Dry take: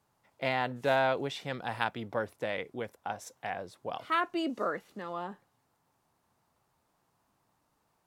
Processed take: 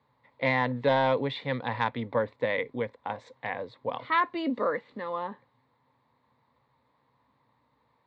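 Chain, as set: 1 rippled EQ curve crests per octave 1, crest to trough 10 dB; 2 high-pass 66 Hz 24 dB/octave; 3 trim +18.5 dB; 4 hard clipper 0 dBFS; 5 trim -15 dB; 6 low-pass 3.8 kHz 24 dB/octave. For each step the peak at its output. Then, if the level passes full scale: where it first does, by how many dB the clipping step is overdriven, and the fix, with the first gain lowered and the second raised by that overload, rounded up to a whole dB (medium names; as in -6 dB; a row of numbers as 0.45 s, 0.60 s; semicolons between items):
-11.5 dBFS, -12.0 dBFS, +6.5 dBFS, 0.0 dBFS, -15.0 dBFS, -14.0 dBFS; step 3, 6.5 dB; step 3 +11.5 dB, step 5 -8 dB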